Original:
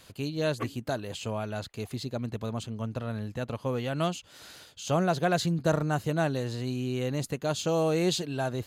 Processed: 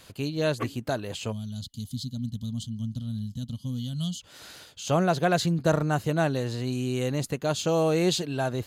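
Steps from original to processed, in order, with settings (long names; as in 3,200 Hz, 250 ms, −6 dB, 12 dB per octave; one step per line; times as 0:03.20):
0:01.32–0:04.21: gain on a spectral selection 270–2,900 Hz −25 dB
0:06.72–0:07.12: parametric band 8,500 Hz +8.5 dB 0.78 octaves
level +2.5 dB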